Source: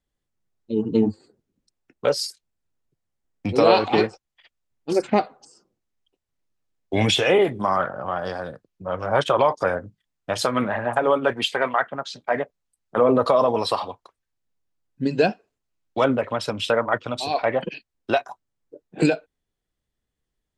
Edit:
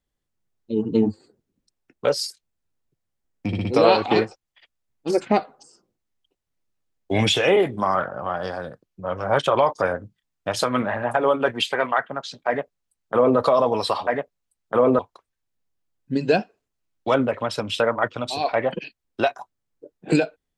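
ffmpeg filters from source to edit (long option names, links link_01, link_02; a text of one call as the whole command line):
ffmpeg -i in.wav -filter_complex "[0:a]asplit=6[link_01][link_02][link_03][link_04][link_05][link_06];[link_01]atrim=end=3.532[link_07];[link_02]atrim=start=3.468:end=3.532[link_08];[link_03]atrim=start=3.468:end=3.532[link_09];[link_04]atrim=start=3.468:end=13.892[link_10];[link_05]atrim=start=12.288:end=13.212[link_11];[link_06]atrim=start=13.888[link_12];[link_07][link_08]acrossfade=duration=0.004:curve1=hsin:curve2=hsin[link_13];[link_13][link_09]acrossfade=duration=0.004:curve1=hsin:curve2=hsin[link_14];[link_14][link_10]acrossfade=duration=0.004:curve1=hsin:curve2=hsin[link_15];[link_15][link_11]acrossfade=duration=0.004:curve1=hsin:curve2=hsin[link_16];[link_16][link_12]acrossfade=duration=0.004:curve1=hsin:curve2=hsin" out.wav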